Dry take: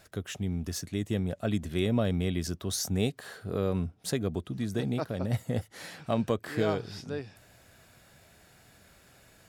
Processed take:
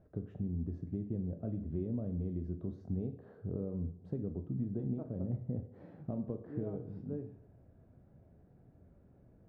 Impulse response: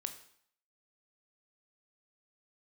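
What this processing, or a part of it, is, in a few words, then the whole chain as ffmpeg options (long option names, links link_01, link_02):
television next door: -filter_complex "[0:a]acompressor=threshold=-34dB:ratio=4,lowpass=380[link_01];[1:a]atrim=start_sample=2205[link_02];[link_01][link_02]afir=irnorm=-1:irlink=0,volume=3dB"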